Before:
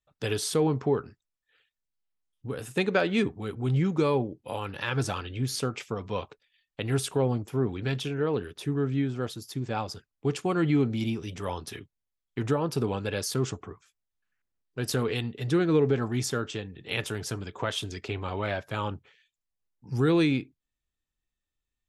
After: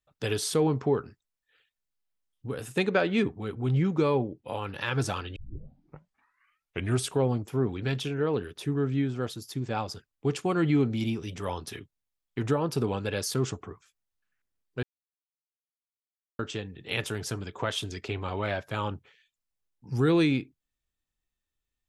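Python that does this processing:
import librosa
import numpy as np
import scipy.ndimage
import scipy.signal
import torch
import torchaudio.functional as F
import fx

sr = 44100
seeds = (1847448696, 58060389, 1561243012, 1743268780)

y = fx.high_shelf(x, sr, hz=6900.0, db=-10.0, at=(2.89, 4.68))
y = fx.edit(y, sr, fx.tape_start(start_s=5.36, length_s=1.72),
    fx.silence(start_s=14.83, length_s=1.56), tone=tone)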